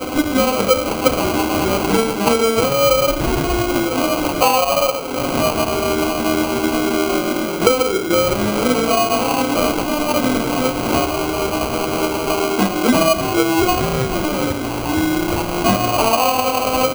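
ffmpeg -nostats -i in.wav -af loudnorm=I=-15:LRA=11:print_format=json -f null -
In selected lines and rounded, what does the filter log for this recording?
"input_i" : "-17.3",
"input_tp" : "-1.0",
"input_lra" : "1.5",
"input_thresh" : "-27.3",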